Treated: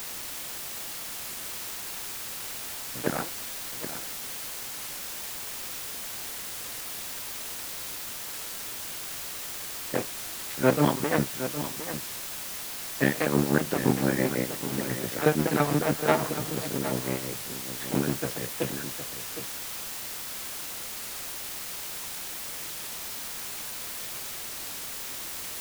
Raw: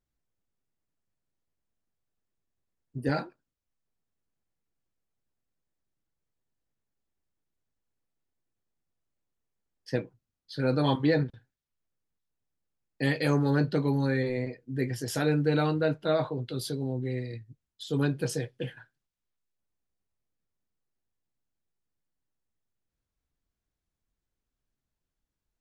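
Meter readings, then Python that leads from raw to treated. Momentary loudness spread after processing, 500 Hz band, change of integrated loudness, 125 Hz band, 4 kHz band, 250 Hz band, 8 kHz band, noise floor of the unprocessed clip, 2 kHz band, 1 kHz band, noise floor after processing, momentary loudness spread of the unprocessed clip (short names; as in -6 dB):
9 LU, +1.5 dB, -1.5 dB, -2.0 dB, +8.0 dB, +1.5 dB, +16.5 dB, under -85 dBFS, +5.0 dB, +5.5 dB, -37 dBFS, 14 LU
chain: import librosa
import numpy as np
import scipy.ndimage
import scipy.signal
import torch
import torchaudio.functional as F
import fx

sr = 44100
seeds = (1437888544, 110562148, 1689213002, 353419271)

p1 = fx.cycle_switch(x, sr, every=2, mode='muted')
p2 = scipy.signal.sosfilt(scipy.signal.cheby1(2, 1.0, [130.0, 2200.0], 'bandpass', fs=sr, output='sos'), p1)
p3 = fx.low_shelf(p2, sr, hz=140.0, db=-7.5)
p4 = p3 * (1.0 - 0.71 / 2.0 + 0.71 / 2.0 * np.cos(2.0 * np.pi * 5.9 * (np.arange(len(p3)) / sr)))
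p5 = fx.quant_dither(p4, sr, seeds[0], bits=6, dither='triangular')
p6 = p4 + F.gain(torch.from_numpy(p5), -7.5).numpy()
p7 = p6 + 10.0 ** (-11.0 / 20.0) * np.pad(p6, (int(764 * sr / 1000.0), 0))[:len(p6)]
p8 = fx.record_warp(p7, sr, rpm=33.33, depth_cents=100.0)
y = F.gain(torch.from_numpy(p8), 6.5).numpy()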